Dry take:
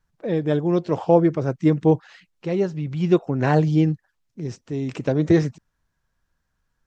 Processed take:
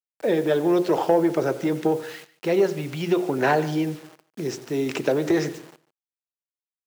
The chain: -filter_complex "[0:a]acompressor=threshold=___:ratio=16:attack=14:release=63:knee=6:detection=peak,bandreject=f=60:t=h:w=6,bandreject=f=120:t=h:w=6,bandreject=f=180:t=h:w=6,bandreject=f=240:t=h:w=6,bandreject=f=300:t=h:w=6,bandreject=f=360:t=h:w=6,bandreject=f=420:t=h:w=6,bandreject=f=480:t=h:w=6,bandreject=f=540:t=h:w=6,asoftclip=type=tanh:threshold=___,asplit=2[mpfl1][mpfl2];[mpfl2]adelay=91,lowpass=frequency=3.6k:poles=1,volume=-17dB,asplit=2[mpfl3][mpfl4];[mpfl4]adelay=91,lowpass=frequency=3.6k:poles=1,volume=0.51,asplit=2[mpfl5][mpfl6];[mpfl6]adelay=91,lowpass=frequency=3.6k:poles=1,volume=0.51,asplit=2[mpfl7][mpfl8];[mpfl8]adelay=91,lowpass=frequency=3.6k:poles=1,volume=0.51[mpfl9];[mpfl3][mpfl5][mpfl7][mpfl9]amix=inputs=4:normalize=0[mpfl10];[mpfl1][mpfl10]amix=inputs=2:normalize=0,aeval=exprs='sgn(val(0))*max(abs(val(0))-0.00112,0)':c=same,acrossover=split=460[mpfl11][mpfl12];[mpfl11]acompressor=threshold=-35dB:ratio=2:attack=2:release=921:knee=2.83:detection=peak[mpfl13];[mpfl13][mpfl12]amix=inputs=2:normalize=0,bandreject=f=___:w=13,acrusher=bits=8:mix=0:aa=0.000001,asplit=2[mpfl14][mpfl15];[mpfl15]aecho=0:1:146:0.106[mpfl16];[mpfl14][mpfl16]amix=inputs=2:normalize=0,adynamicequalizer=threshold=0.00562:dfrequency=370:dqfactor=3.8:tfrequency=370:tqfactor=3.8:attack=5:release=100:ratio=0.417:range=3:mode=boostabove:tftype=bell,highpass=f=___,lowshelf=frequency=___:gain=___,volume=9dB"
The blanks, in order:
-21dB, -13dB, 1.1k, 150, 200, -7